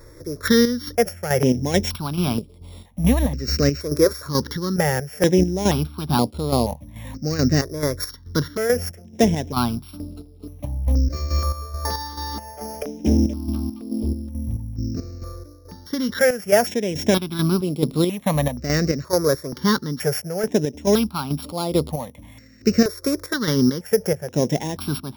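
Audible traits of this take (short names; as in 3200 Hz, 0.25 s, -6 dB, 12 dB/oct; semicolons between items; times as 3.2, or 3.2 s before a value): a buzz of ramps at a fixed pitch in blocks of 8 samples; chopped level 2.3 Hz, depth 60%, duty 50%; notches that jump at a steady rate 2.1 Hz 790–6000 Hz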